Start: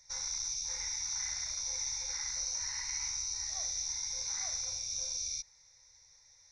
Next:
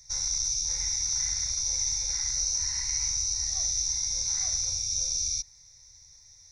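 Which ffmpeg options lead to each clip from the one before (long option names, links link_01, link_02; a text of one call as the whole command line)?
ffmpeg -i in.wav -af "bass=frequency=250:gain=14,treble=frequency=4000:gain=10" out.wav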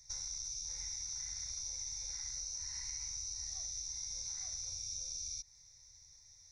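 ffmpeg -i in.wav -af "acompressor=threshold=-33dB:ratio=6,volume=-6.5dB" out.wav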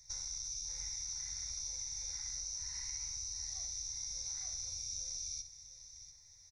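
ffmpeg -i in.wav -af "aecho=1:1:60|695:0.266|0.224" out.wav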